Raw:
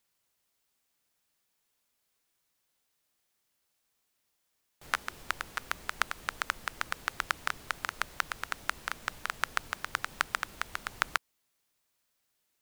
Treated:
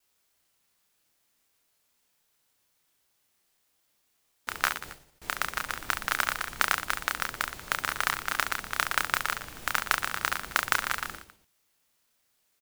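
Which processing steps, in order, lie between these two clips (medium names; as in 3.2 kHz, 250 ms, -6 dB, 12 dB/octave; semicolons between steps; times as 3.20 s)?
slices played last to first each 149 ms, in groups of 5; reverse bouncing-ball echo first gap 30 ms, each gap 1.3×, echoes 5; modulation noise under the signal 10 dB; trim +3 dB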